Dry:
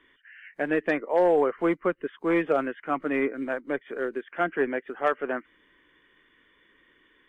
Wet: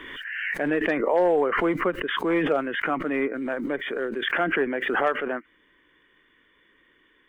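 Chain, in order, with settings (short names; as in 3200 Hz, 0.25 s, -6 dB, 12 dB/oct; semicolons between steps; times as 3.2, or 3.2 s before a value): backwards sustainer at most 29 dB/s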